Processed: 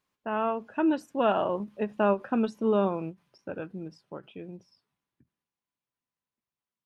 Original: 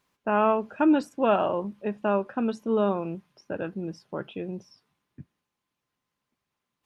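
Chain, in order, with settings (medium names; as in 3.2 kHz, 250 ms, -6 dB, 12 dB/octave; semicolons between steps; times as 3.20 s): Doppler pass-by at 2.19 s, 11 m/s, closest 9.6 m; endings held to a fixed fall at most 330 dB/s; trim +1 dB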